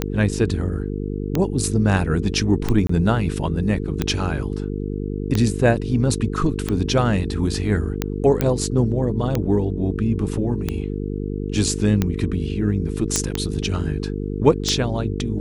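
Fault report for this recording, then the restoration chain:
mains buzz 50 Hz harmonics 9 −26 dBFS
scratch tick 45 rpm −7 dBFS
0:02.87–0:02.89: drop-out 24 ms
0:08.41: click −6 dBFS
0:13.16: click −4 dBFS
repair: click removal
hum removal 50 Hz, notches 9
repair the gap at 0:02.87, 24 ms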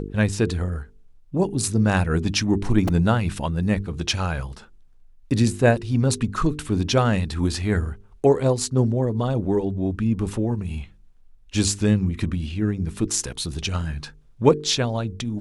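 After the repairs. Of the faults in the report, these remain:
0:13.16: click

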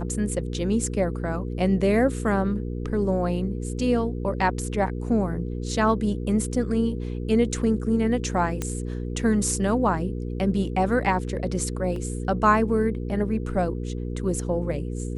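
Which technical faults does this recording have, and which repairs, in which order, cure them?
mains hum 60 Hz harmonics 8 −30 dBFS
0:08.62: click −13 dBFS
0:11.96: drop-out 2.5 ms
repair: click removal
hum removal 60 Hz, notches 8
repair the gap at 0:11.96, 2.5 ms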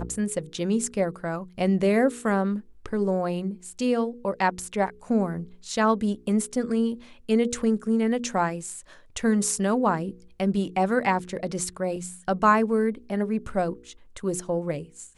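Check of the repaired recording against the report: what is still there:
0:08.62: click

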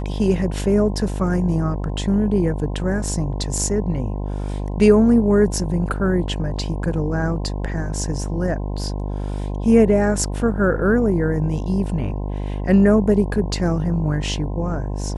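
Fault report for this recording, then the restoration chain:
mains buzz 50 Hz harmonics 21 −25 dBFS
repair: hum removal 50 Hz, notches 21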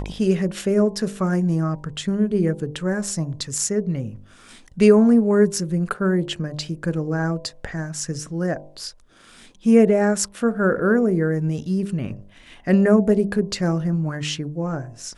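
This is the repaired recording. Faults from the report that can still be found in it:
none of them is left

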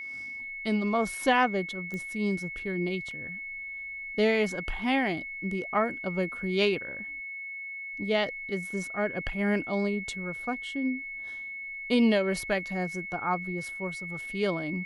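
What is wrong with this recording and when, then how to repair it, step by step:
whistle 2,200 Hz −36 dBFS
0:01.94: click −24 dBFS
0:03.11: drop-out 2 ms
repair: click removal
notch filter 2,200 Hz, Q 30
repair the gap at 0:03.11, 2 ms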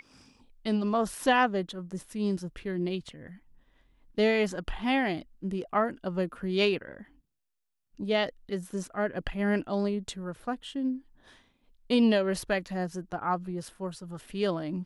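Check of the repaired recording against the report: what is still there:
none of them is left

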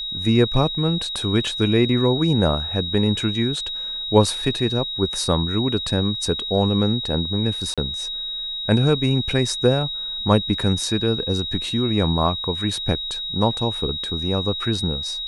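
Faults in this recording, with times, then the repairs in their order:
whistle 3,800 Hz −26 dBFS
0:07.74–0:07.78: drop-out 36 ms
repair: notch filter 3,800 Hz, Q 30
repair the gap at 0:07.74, 36 ms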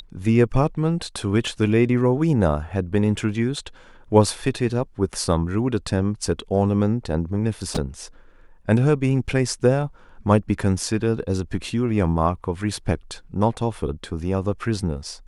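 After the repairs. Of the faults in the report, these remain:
none of them is left

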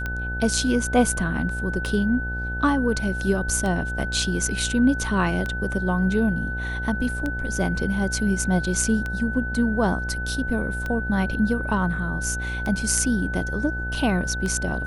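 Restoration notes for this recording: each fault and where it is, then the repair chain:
mains buzz 60 Hz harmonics 15 −30 dBFS
scratch tick 33 1/3 rpm −15 dBFS
whistle 1,500 Hz −29 dBFS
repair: click removal
hum removal 60 Hz, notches 15
notch filter 1,500 Hz, Q 30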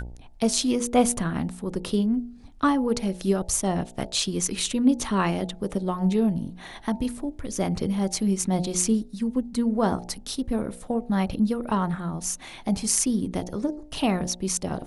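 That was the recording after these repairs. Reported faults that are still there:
none of them is left

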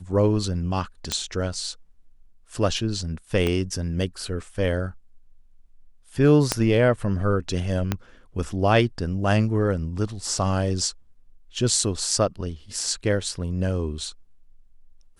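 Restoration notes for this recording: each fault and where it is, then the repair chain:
0:01.12: click −9 dBFS
0:03.47: click −12 dBFS
0:06.52: click −5 dBFS
0:07.92: click −9 dBFS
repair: click removal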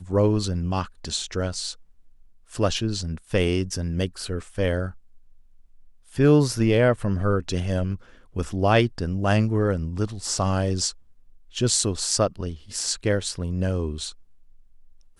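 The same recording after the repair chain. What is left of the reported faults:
0:03.47: click
0:06.52: click
0:07.92: click

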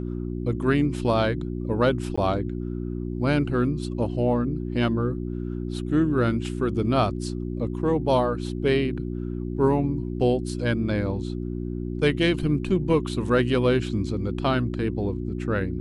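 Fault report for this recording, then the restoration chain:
mains hum 60 Hz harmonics 6 −30 dBFS
0:02.16–0:02.17: drop-out 15 ms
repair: hum removal 60 Hz, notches 6
repair the gap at 0:02.16, 15 ms

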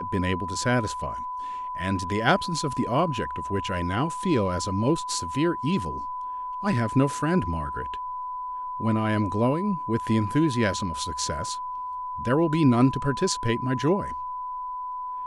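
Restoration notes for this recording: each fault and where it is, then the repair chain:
whistle 1,000 Hz −30 dBFS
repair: notch filter 1,000 Hz, Q 30

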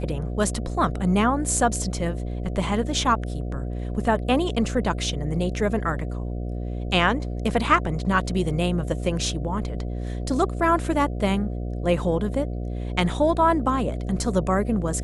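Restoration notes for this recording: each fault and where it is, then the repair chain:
mains buzz 60 Hz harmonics 12 −29 dBFS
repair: hum removal 60 Hz, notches 12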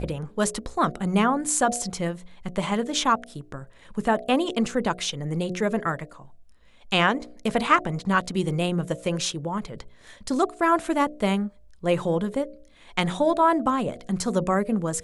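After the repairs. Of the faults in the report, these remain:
none of them is left

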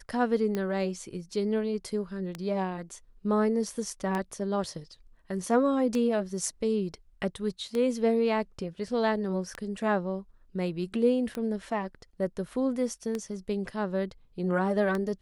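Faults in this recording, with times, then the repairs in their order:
scratch tick 33 1/3 rpm −18 dBFS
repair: click removal

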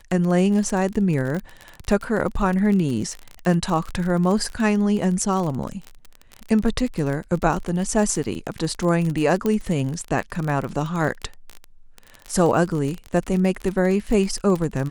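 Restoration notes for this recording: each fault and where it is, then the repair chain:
surface crackle 34 per second −25 dBFS
0:09.46: click −11 dBFS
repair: click removal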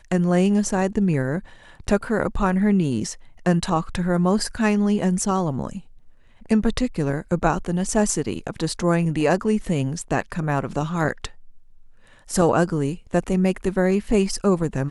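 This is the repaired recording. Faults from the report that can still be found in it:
none of them is left

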